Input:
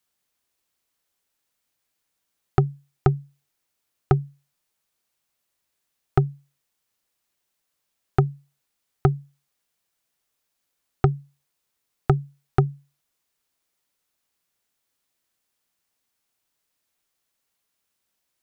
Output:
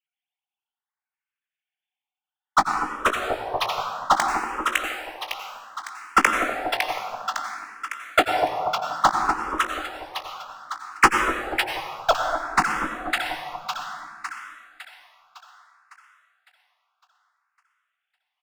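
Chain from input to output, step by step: formants replaced by sine waves; high-pass 680 Hz 24 dB/octave; treble shelf 2 kHz +10.5 dB; waveshaping leveller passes 5; doubling 19 ms -10 dB; two-band feedback delay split 1.1 kHz, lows 240 ms, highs 556 ms, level -6 dB; gain riding within 4 dB 0.5 s; plate-style reverb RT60 1.7 s, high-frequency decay 0.6×, pre-delay 75 ms, DRR 3.5 dB; barber-pole phaser +0.61 Hz

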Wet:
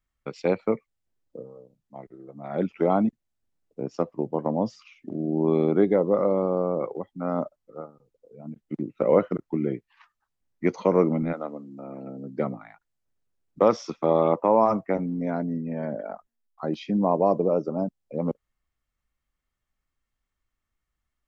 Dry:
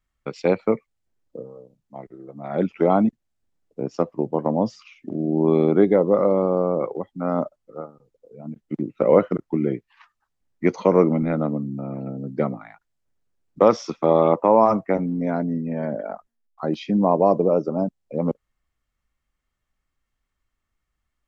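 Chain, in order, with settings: 11.32–12.45 s: high-pass 580 Hz -> 140 Hz 12 dB/octave; trim -4 dB

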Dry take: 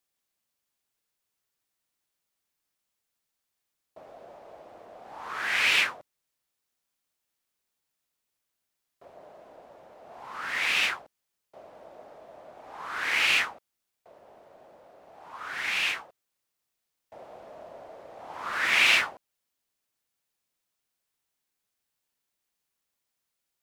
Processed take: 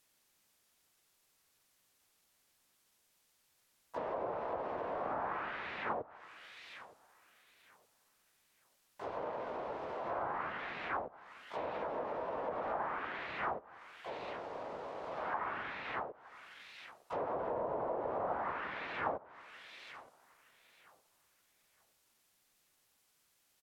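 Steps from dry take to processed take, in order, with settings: reverse; compression 10:1, threshold -37 dBFS, peak gain reduction 20 dB; reverse; filtered feedback delay 917 ms, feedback 27%, low-pass 2.5 kHz, level -21 dB; harmony voices -4 st -2 dB, +7 st -2 dB; low-pass that closes with the level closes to 950 Hz, closed at -38.5 dBFS; trim +6.5 dB

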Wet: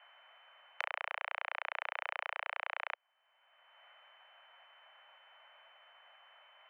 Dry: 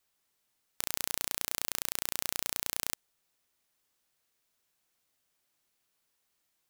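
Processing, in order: sorted samples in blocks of 16 samples; mistuned SSB +290 Hz 290–2200 Hz; three bands compressed up and down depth 70%; trim +6 dB

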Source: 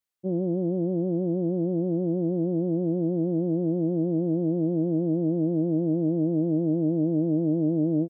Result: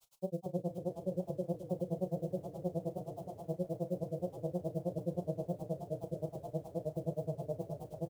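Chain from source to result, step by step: random holes in the spectrogram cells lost 26%; bass shelf 430 Hz -9.5 dB; hum notches 50/100/150/200 Hz; in parallel at +0.5 dB: peak limiter -31.5 dBFS, peak gain reduction 9.5 dB; on the sum: added noise white -65 dBFS; granulator 67 ms, grains 9.5 per s, spray 18 ms, pitch spread up and down by 0 st; static phaser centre 730 Hz, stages 4; doubling 33 ms -14 dB; on a send: frequency-shifting echo 243 ms, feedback 40%, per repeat -34 Hz, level -13 dB; on the sum: bit-crushed delay 214 ms, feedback 80%, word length 12-bit, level -12.5 dB; trim +4 dB

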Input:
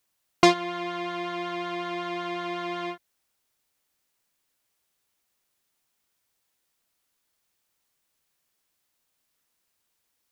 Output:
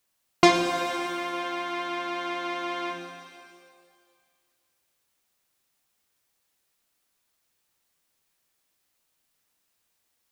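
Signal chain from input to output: pitch-shifted reverb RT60 1.9 s, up +7 st, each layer -8 dB, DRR 4 dB

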